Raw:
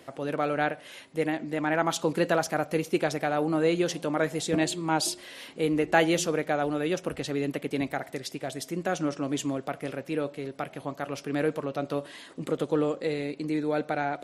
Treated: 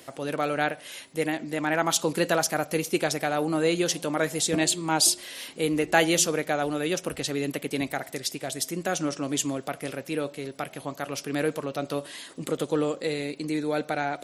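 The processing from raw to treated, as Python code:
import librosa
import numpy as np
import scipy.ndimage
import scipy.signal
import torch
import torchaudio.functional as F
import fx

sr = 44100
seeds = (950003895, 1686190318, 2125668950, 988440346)

y = fx.high_shelf(x, sr, hz=3800.0, db=12.0)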